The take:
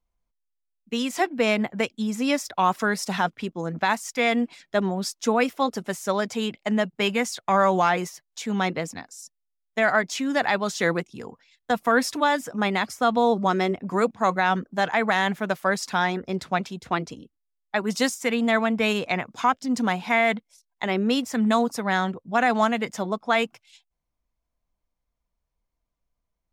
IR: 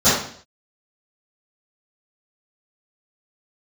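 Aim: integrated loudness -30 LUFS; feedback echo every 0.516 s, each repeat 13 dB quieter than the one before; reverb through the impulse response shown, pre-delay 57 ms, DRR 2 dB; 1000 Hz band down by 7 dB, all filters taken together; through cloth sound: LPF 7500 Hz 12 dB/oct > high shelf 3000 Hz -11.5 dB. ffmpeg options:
-filter_complex "[0:a]equalizer=f=1k:t=o:g=-8.5,aecho=1:1:516|1032|1548:0.224|0.0493|0.0108,asplit=2[a][b];[1:a]atrim=start_sample=2205,adelay=57[c];[b][c]afir=irnorm=-1:irlink=0,volume=-25dB[d];[a][d]amix=inputs=2:normalize=0,lowpass=7.5k,highshelf=f=3k:g=-11.5,volume=-7dB"

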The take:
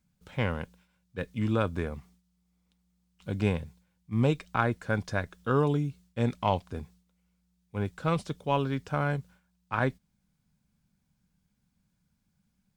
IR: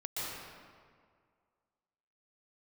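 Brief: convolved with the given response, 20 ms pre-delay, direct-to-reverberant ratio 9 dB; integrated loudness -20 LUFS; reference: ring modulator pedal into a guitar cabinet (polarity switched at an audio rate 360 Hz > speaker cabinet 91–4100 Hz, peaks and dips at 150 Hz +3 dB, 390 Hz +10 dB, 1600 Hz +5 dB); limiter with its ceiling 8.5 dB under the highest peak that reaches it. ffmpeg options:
-filter_complex "[0:a]alimiter=limit=-17.5dB:level=0:latency=1,asplit=2[a][b];[1:a]atrim=start_sample=2205,adelay=20[c];[b][c]afir=irnorm=-1:irlink=0,volume=-13dB[d];[a][d]amix=inputs=2:normalize=0,aeval=exprs='val(0)*sgn(sin(2*PI*360*n/s))':c=same,highpass=91,equalizer=f=150:t=q:w=4:g=3,equalizer=f=390:t=q:w=4:g=10,equalizer=f=1.6k:t=q:w=4:g=5,lowpass=f=4.1k:w=0.5412,lowpass=f=4.1k:w=1.3066,volume=10dB"

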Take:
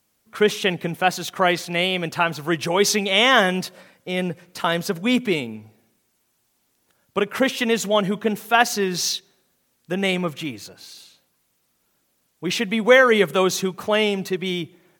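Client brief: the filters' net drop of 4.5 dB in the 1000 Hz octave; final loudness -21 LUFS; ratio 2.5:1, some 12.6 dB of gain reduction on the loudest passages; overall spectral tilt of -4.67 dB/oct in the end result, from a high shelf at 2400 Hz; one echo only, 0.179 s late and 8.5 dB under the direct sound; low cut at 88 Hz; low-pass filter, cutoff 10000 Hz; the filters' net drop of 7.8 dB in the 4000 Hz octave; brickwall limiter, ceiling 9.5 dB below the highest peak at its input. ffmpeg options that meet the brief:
-af "highpass=88,lowpass=10k,equalizer=f=1k:t=o:g=-5.5,highshelf=f=2.4k:g=-3,equalizer=f=4k:t=o:g=-8,acompressor=threshold=-30dB:ratio=2.5,alimiter=limit=-23.5dB:level=0:latency=1,aecho=1:1:179:0.376,volume=13dB"

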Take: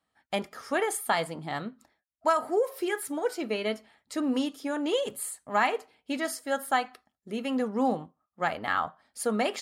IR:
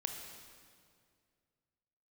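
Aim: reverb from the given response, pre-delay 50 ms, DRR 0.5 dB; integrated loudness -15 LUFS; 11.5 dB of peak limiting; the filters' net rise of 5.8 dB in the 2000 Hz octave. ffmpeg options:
-filter_complex "[0:a]equalizer=f=2k:t=o:g=7,alimiter=limit=-19dB:level=0:latency=1,asplit=2[a][b];[1:a]atrim=start_sample=2205,adelay=50[c];[b][c]afir=irnorm=-1:irlink=0,volume=-1dB[d];[a][d]amix=inputs=2:normalize=0,volume=13.5dB"

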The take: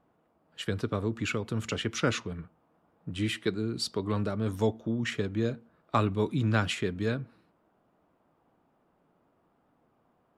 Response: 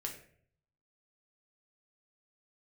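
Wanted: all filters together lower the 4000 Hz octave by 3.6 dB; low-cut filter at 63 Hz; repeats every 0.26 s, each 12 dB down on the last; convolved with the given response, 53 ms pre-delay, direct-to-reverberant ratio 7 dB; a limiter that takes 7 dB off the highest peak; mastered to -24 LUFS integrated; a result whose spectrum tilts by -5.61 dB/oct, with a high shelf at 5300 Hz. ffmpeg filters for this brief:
-filter_complex "[0:a]highpass=63,equalizer=f=4k:t=o:g=-6.5,highshelf=f=5.3k:g=3.5,alimiter=limit=-20.5dB:level=0:latency=1,aecho=1:1:260|520|780:0.251|0.0628|0.0157,asplit=2[a][b];[1:a]atrim=start_sample=2205,adelay=53[c];[b][c]afir=irnorm=-1:irlink=0,volume=-6.5dB[d];[a][d]amix=inputs=2:normalize=0,volume=8dB"

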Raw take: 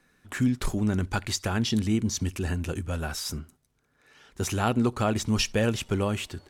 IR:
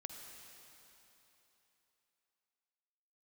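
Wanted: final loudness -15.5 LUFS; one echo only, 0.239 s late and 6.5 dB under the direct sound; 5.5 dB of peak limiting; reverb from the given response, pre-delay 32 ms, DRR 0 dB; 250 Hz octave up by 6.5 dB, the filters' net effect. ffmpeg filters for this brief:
-filter_complex "[0:a]equalizer=f=250:t=o:g=7.5,alimiter=limit=-14.5dB:level=0:latency=1,aecho=1:1:239:0.473,asplit=2[a][b];[1:a]atrim=start_sample=2205,adelay=32[c];[b][c]afir=irnorm=-1:irlink=0,volume=3.5dB[d];[a][d]amix=inputs=2:normalize=0,volume=6dB"

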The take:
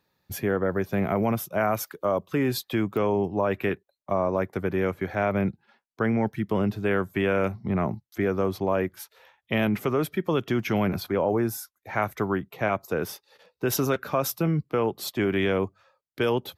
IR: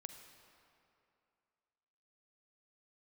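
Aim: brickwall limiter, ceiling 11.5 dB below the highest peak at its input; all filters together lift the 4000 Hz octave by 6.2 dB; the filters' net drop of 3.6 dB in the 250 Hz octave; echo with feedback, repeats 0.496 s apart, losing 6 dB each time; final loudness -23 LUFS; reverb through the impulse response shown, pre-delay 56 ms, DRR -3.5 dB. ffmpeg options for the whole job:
-filter_complex "[0:a]equalizer=f=250:t=o:g=-5,equalizer=f=4k:t=o:g=8,alimiter=limit=-20dB:level=0:latency=1,aecho=1:1:496|992|1488|1984|2480|2976:0.501|0.251|0.125|0.0626|0.0313|0.0157,asplit=2[a][b];[1:a]atrim=start_sample=2205,adelay=56[c];[b][c]afir=irnorm=-1:irlink=0,volume=8.5dB[d];[a][d]amix=inputs=2:normalize=0,volume=2dB"

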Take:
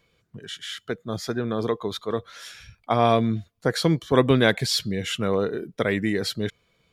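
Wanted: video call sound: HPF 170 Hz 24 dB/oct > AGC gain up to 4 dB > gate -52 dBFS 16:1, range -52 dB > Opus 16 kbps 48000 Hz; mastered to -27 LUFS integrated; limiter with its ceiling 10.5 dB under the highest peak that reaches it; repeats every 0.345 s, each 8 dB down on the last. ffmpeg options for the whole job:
-af "alimiter=limit=-14dB:level=0:latency=1,highpass=f=170:w=0.5412,highpass=f=170:w=1.3066,aecho=1:1:345|690|1035|1380|1725:0.398|0.159|0.0637|0.0255|0.0102,dynaudnorm=m=4dB,agate=range=-52dB:threshold=-52dB:ratio=16,volume=1.5dB" -ar 48000 -c:a libopus -b:a 16k

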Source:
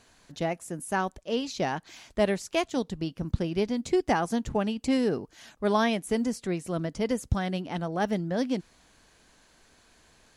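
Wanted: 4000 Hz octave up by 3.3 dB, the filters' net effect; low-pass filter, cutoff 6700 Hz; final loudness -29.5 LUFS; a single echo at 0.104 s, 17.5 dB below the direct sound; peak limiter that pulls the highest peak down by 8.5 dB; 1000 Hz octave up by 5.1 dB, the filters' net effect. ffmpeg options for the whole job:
-af "lowpass=6.7k,equalizer=f=1k:t=o:g=6.5,equalizer=f=4k:t=o:g=4.5,alimiter=limit=-17dB:level=0:latency=1,aecho=1:1:104:0.133"

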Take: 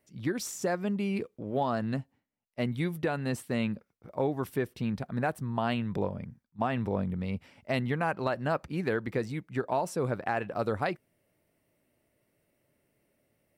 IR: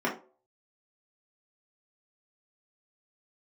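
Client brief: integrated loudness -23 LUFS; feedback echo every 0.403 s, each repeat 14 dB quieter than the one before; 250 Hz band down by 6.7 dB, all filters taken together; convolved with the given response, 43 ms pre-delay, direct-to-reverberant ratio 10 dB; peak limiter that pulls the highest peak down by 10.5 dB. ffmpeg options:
-filter_complex "[0:a]equalizer=f=250:t=o:g=-9,alimiter=level_in=3dB:limit=-24dB:level=0:latency=1,volume=-3dB,aecho=1:1:403|806:0.2|0.0399,asplit=2[a][b];[1:a]atrim=start_sample=2205,adelay=43[c];[b][c]afir=irnorm=-1:irlink=0,volume=-21dB[d];[a][d]amix=inputs=2:normalize=0,volume=15dB"

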